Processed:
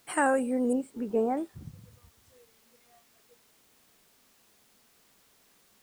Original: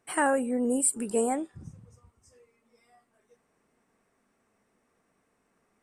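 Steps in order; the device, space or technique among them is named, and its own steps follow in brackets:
0:00.73–0:01.37: Bessel low-pass filter 1,400 Hz, order 2
plain cassette with noise reduction switched in (one half of a high-frequency compander decoder only; tape wow and flutter; white noise bed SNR 29 dB)
high-shelf EQ 8,000 Hz −3.5 dB

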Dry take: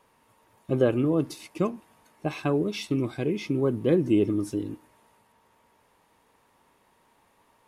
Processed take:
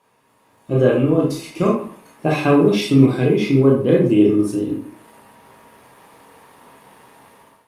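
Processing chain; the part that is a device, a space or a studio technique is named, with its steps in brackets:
far-field microphone of a smart speaker (convolution reverb RT60 0.50 s, pre-delay 19 ms, DRR −3 dB; high-pass filter 100 Hz 12 dB per octave; automatic gain control gain up to 15 dB; level −1 dB; Opus 48 kbit/s 48,000 Hz)

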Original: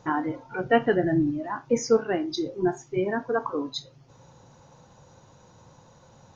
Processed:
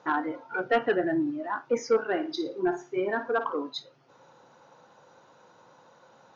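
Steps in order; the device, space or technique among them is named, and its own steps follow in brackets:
intercom (band-pass filter 320–4,100 Hz; parametric band 1,400 Hz +5.5 dB 0.32 octaves; soft clipping −14 dBFS, distortion −15 dB)
0:02.07–0:03.54: flutter between parallel walls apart 9.6 metres, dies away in 0.31 s

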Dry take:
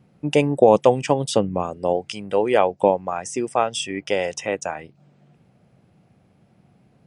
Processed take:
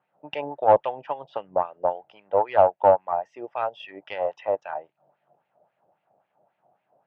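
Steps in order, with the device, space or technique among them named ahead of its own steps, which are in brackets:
wah-wah guitar rig (LFO wah 3.7 Hz 600–2,300 Hz, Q 2.1; tube saturation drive 12 dB, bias 0.5; loudspeaker in its box 91–3,700 Hz, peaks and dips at 230 Hz −6 dB, 620 Hz +9 dB, 880 Hz +9 dB, 2,200 Hz −7 dB)

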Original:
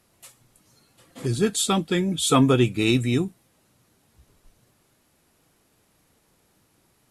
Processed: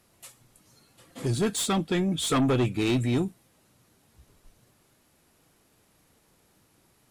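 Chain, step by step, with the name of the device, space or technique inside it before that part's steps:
0:01.68–0:03.16: high-shelf EQ 4,000 Hz −4 dB
saturation between pre-emphasis and de-emphasis (high-shelf EQ 4,900 Hz +8.5 dB; soft clipping −19 dBFS, distortion −10 dB; high-shelf EQ 4,900 Hz −8.5 dB)

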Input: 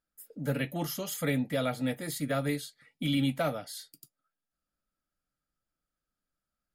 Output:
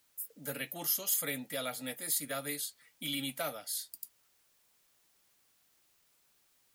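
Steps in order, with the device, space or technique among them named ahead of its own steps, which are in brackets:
turntable without a phono preamp (RIAA equalisation recording; white noise bed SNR 31 dB)
level −6 dB

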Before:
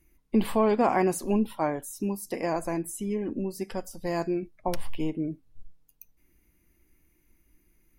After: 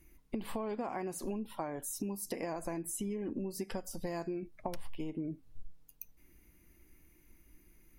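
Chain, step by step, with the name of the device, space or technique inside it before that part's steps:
serial compression, peaks first (downward compressor 10 to 1, threshold −32 dBFS, peak gain reduction 14.5 dB; downward compressor 2 to 1, threshold −41 dBFS, peak gain reduction 7 dB)
level +3 dB

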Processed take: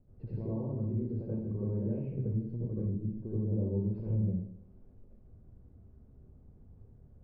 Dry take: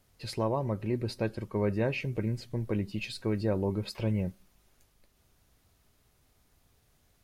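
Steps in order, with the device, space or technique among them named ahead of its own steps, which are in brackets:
television next door (downward compressor 4 to 1, threshold −45 dBFS, peak gain reduction 17.5 dB; low-pass filter 320 Hz 12 dB per octave; convolution reverb RT60 0.75 s, pre-delay 65 ms, DRR −8 dB)
0:02.90–0:03.91: low-pass filter 1,200 Hz 24 dB per octave
level +5.5 dB

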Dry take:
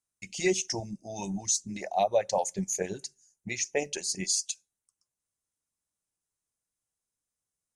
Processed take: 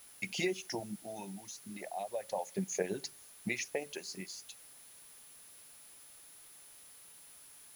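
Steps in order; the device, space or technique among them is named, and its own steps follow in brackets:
medium wave at night (band-pass filter 170–3,500 Hz; downward compressor, threshold −37 dBFS, peak gain reduction 16 dB; amplitude tremolo 0.33 Hz, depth 79%; steady tone 10,000 Hz −63 dBFS; white noise bed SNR 17 dB)
level +7 dB

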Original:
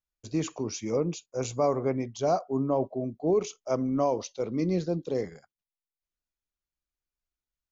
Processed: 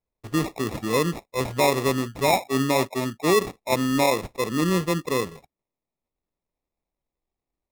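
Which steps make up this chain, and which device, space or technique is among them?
crushed at another speed (tape speed factor 0.8×; decimation without filtering 36×; tape speed factor 1.25×)
level +5 dB

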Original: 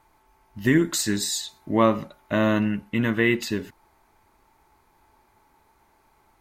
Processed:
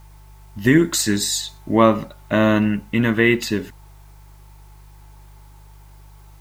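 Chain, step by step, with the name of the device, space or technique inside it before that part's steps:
video cassette with head-switching buzz (hum with harmonics 50 Hz, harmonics 3, −50 dBFS −7 dB per octave; white noise bed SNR 38 dB)
level +5 dB

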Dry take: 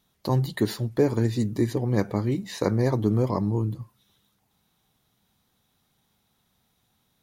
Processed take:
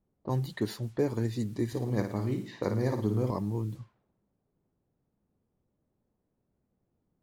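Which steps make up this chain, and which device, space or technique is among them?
cassette deck with a dynamic noise filter (white noise bed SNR 29 dB; low-pass that shuts in the quiet parts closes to 320 Hz, open at −23 dBFS)
0:01.67–0:03.31: flutter between parallel walls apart 9.5 metres, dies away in 0.48 s
level −7 dB

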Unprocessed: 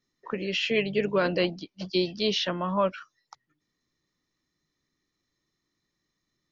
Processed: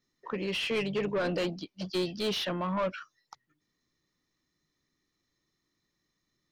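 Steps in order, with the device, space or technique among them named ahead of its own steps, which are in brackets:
saturation between pre-emphasis and de-emphasis (high-shelf EQ 3,900 Hz +10.5 dB; soft clipping −24.5 dBFS, distortion −9 dB; high-shelf EQ 3,900 Hz −10.5 dB)

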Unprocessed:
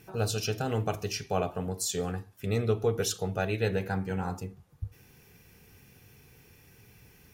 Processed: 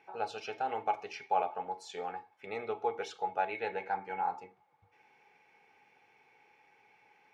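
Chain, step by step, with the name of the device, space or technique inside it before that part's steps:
tin-can telephone (band-pass filter 510–2,600 Hz; hollow resonant body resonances 840/2,200 Hz, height 17 dB, ringing for 50 ms)
level −4 dB

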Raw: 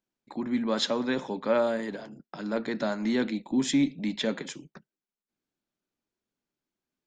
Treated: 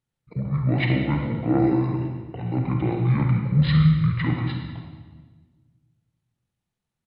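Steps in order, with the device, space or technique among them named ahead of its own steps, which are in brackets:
monster voice (pitch shifter −10 semitones; low-shelf EQ 140 Hz +8.5 dB; convolution reverb RT60 1.5 s, pre-delay 33 ms, DRR 1.5 dB)
level +1 dB

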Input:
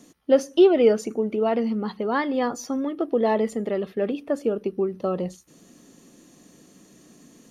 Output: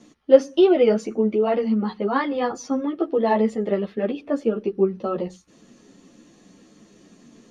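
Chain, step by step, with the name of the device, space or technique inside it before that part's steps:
string-machine ensemble chorus (string-ensemble chorus; low-pass filter 5,300 Hz 12 dB per octave)
level +4.5 dB

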